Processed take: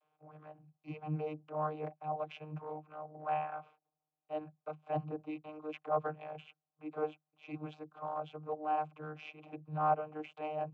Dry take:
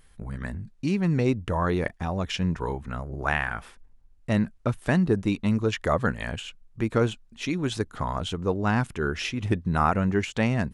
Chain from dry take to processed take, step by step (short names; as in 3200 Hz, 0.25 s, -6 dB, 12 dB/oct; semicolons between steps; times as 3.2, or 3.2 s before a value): vowel filter a; transient shaper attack -8 dB, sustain -3 dB; vocoder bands 32, saw 153 Hz; gain +5 dB